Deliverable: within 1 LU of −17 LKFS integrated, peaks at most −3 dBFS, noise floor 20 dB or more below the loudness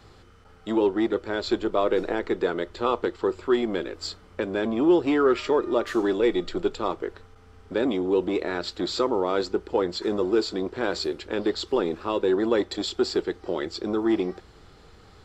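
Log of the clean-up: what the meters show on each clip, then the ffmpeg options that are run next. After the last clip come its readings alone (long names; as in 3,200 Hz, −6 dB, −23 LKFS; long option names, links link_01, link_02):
integrated loudness −25.5 LKFS; sample peak −9.0 dBFS; target loudness −17.0 LKFS
→ -af "volume=8.5dB,alimiter=limit=-3dB:level=0:latency=1"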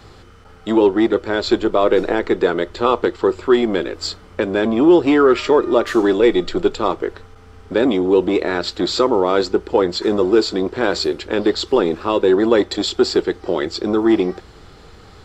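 integrated loudness −17.5 LKFS; sample peak −3.0 dBFS; background noise floor −43 dBFS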